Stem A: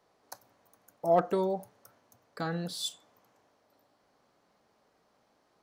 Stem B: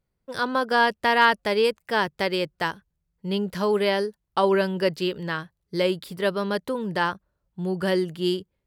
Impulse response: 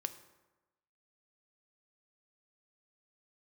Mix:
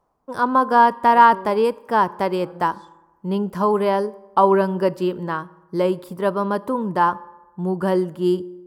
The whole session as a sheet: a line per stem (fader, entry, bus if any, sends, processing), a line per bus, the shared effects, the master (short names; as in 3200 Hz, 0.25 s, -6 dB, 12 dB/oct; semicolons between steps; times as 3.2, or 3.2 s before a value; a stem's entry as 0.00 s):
-4.5 dB, 0.00 s, no send, treble ducked by the level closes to 1500 Hz, closed at -27.5 dBFS; auto swell 0.196 s; auto duck -7 dB, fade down 0.25 s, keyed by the second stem
-4.5 dB, 0.00 s, send -4 dB, dry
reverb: on, RT60 1.1 s, pre-delay 3 ms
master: ten-band EQ 250 Hz +7 dB, 1000 Hz +12 dB, 2000 Hz -6 dB, 4000 Hz -9 dB